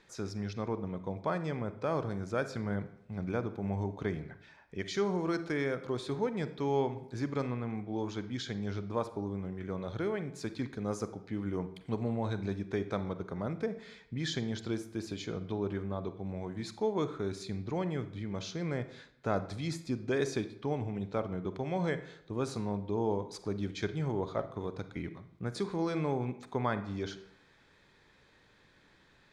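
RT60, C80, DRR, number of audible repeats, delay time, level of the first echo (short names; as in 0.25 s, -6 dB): 0.75 s, 16.0 dB, 11.5 dB, none, none, none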